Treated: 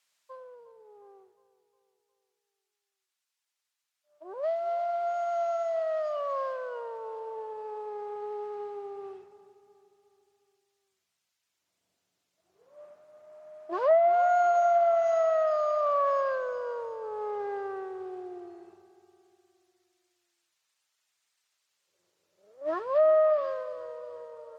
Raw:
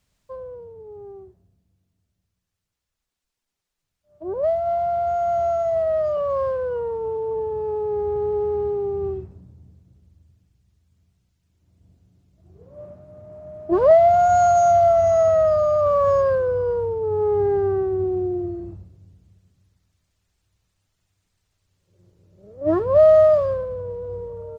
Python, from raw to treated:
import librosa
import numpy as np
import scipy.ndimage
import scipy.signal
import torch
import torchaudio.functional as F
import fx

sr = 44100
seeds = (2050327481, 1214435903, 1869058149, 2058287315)

y = scipy.signal.sosfilt(scipy.signal.bessel(2, 1200.0, 'highpass', norm='mag', fs=sr, output='sos'), x)
y = fx.echo_feedback(y, sr, ms=358, feedback_pct=52, wet_db=-17)
y = fx.env_lowpass_down(y, sr, base_hz=1700.0, full_db=-18.5)